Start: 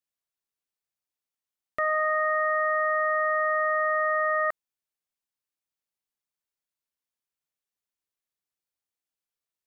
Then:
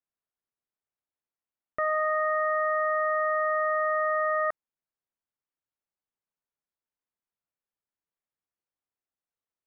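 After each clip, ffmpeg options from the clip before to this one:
ffmpeg -i in.wav -af "lowpass=1700" out.wav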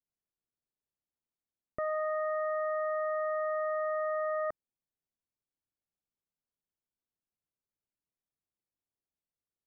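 ffmpeg -i in.wav -af "tiltshelf=frequency=780:gain=9,volume=-5.5dB" out.wav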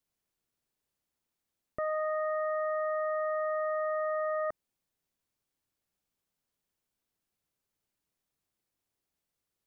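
ffmpeg -i in.wav -af "alimiter=level_in=9.5dB:limit=-24dB:level=0:latency=1,volume=-9.5dB,volume=8.5dB" out.wav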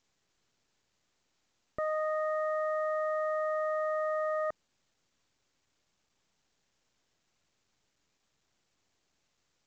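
ffmpeg -i in.wav -ar 16000 -c:a pcm_mulaw out.wav

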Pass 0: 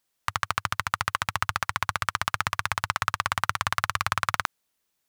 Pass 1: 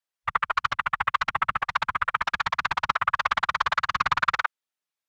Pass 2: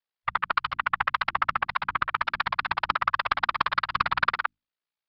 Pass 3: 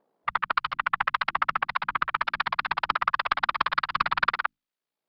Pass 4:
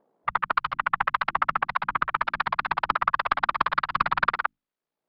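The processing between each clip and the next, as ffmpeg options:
ffmpeg -i in.wav -filter_complex "[0:a]asplit=2[link_01][link_02];[link_02]highpass=frequency=720:poles=1,volume=13dB,asoftclip=type=tanh:threshold=-3dB[link_03];[link_01][link_03]amix=inputs=2:normalize=0,lowpass=frequency=4200:poles=1,volume=-6dB,afftfilt=real='hypot(re,im)*cos(2*PI*random(0))':imag='hypot(re,im)*sin(2*PI*random(1))':win_size=512:overlap=0.75,afwtdn=0.00891,volume=5dB" out.wav
ffmpeg -i in.wav -af "bandreject=frequency=50:width_type=h:width=6,bandreject=frequency=100:width_type=h:width=6,bandreject=frequency=150:width_type=h:width=6,bandreject=frequency=200:width_type=h:width=6,bandreject=frequency=250:width_type=h:width=6,bandreject=frequency=300:width_type=h:width=6,aeval=exprs='val(0)*sin(2*PI*29*n/s)':channel_layout=same,aresample=11025,aeval=exprs='clip(val(0),-1,0.188)':channel_layout=same,aresample=44100,volume=2dB" out.wav
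ffmpeg -i in.wav -filter_complex "[0:a]equalizer=frequency=83:width_type=o:width=0.64:gain=-14,acrossover=split=150|760[link_01][link_02][link_03];[link_02]acompressor=mode=upward:threshold=-48dB:ratio=2.5[link_04];[link_01][link_04][link_03]amix=inputs=3:normalize=0" out.wav
ffmpeg -i in.wav -af "highshelf=frequency=2100:gain=-11.5,volume=4.5dB" out.wav

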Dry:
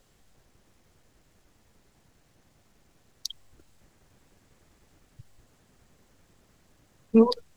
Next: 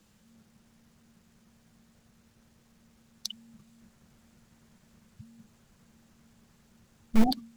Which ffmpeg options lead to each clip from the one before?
ffmpeg -i in.wav -filter_complex "[0:a]afreqshift=-230,asplit=2[link_01][link_02];[link_02]aeval=exprs='(mod(6.68*val(0)+1,2)-1)/6.68':channel_layout=same,volume=-10dB[link_03];[link_01][link_03]amix=inputs=2:normalize=0,volume=-2.5dB" out.wav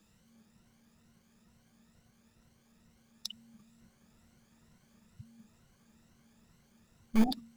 ffmpeg -i in.wav -af "afftfilt=real='re*pow(10,9/40*sin(2*PI*(2*log(max(b,1)*sr/1024/100)/log(2)-(2.2)*(pts-256)/sr)))':imag='im*pow(10,9/40*sin(2*PI*(2*log(max(b,1)*sr/1024/100)/log(2)-(2.2)*(pts-256)/sr)))':win_size=1024:overlap=0.75,volume=-4.5dB" out.wav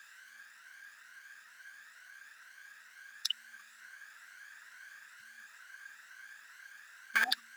ffmpeg -i in.wav -af "alimiter=limit=-23dB:level=0:latency=1:release=11,highpass=frequency=1600:width_type=q:width=13,volume=10dB" out.wav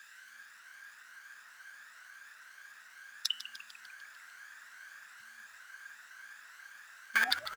ffmpeg -i in.wav -filter_complex "[0:a]bandreject=frequency=164.7:width_type=h:width=4,bandreject=frequency=329.4:width_type=h:width=4,bandreject=frequency=494.1:width_type=h:width=4,bandreject=frequency=658.8:width_type=h:width=4,bandreject=frequency=823.5:width_type=h:width=4,bandreject=frequency=988.2:width_type=h:width=4,bandreject=frequency=1152.9:width_type=h:width=4,bandreject=frequency=1317.6:width_type=h:width=4,bandreject=frequency=1482.3:width_type=h:width=4,bandreject=frequency=1647:width_type=h:width=4,bandreject=frequency=1811.7:width_type=h:width=4,bandreject=frequency=1976.4:width_type=h:width=4,bandreject=frequency=2141.1:width_type=h:width=4,bandreject=frequency=2305.8:width_type=h:width=4,bandreject=frequency=2470.5:width_type=h:width=4,bandreject=frequency=2635.2:width_type=h:width=4,bandreject=frequency=2799.9:width_type=h:width=4,bandreject=frequency=2964.6:width_type=h:width=4,bandreject=frequency=3129.3:width_type=h:width=4,bandreject=frequency=3294:width_type=h:width=4,asplit=8[link_01][link_02][link_03][link_04][link_05][link_06][link_07][link_08];[link_02]adelay=149,afreqshift=-140,volume=-12.5dB[link_09];[link_03]adelay=298,afreqshift=-280,volume=-16.8dB[link_10];[link_04]adelay=447,afreqshift=-420,volume=-21.1dB[link_11];[link_05]adelay=596,afreqshift=-560,volume=-25.4dB[link_12];[link_06]adelay=745,afreqshift=-700,volume=-29.7dB[link_13];[link_07]adelay=894,afreqshift=-840,volume=-34dB[link_14];[link_08]adelay=1043,afreqshift=-980,volume=-38.3dB[link_15];[link_01][link_09][link_10][link_11][link_12][link_13][link_14][link_15]amix=inputs=8:normalize=0,volume=1dB" out.wav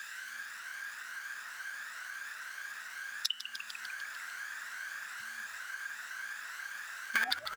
ffmpeg -i in.wav -af "acompressor=threshold=-49dB:ratio=2,volume=10.5dB" out.wav

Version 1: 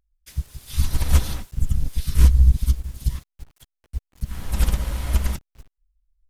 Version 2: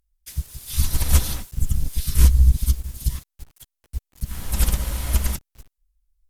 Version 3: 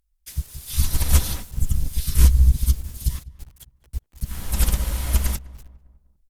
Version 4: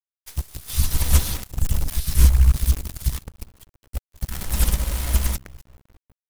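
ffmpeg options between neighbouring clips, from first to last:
ffmpeg -i in.wav -af "aemphasis=mode=production:type=cd" out.wav
ffmpeg -i in.wav -filter_complex "[0:a]asplit=2[link_01][link_02];[link_02]adelay=200,lowpass=frequency=1400:poles=1,volume=-19dB,asplit=2[link_03][link_04];[link_04]adelay=200,lowpass=frequency=1400:poles=1,volume=0.5,asplit=2[link_05][link_06];[link_06]adelay=200,lowpass=frequency=1400:poles=1,volume=0.5,asplit=2[link_07][link_08];[link_08]adelay=200,lowpass=frequency=1400:poles=1,volume=0.5[link_09];[link_01][link_03][link_05][link_07][link_09]amix=inputs=5:normalize=0" out.wav
ffmpeg -i in.wav -af "acrusher=bits=6:dc=4:mix=0:aa=0.000001" out.wav

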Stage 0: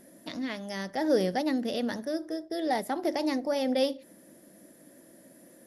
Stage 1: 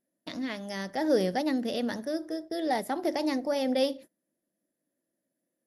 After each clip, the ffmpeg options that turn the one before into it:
ffmpeg -i in.wav -af "agate=range=-29dB:threshold=-44dB:ratio=16:detection=peak" out.wav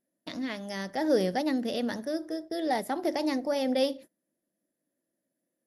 ffmpeg -i in.wav -af anull out.wav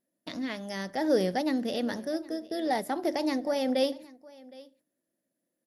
ffmpeg -i in.wav -af "aecho=1:1:765:0.0794" out.wav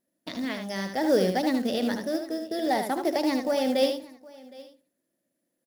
ffmpeg -i in.wav -af "aecho=1:1:76:0.473,acrusher=bits=6:mode=log:mix=0:aa=0.000001,volume=2.5dB" out.wav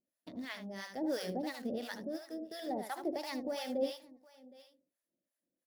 ffmpeg -i in.wav -filter_complex "[0:a]acrossover=split=690[link_01][link_02];[link_01]aeval=exprs='val(0)*(1-1/2+1/2*cos(2*PI*2.9*n/s))':channel_layout=same[link_03];[link_02]aeval=exprs='val(0)*(1-1/2-1/2*cos(2*PI*2.9*n/s))':channel_layout=same[link_04];[link_03][link_04]amix=inputs=2:normalize=0,volume=-7dB" out.wav

